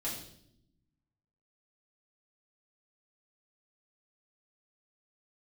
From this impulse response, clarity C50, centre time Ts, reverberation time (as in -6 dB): 5.0 dB, 38 ms, 0.70 s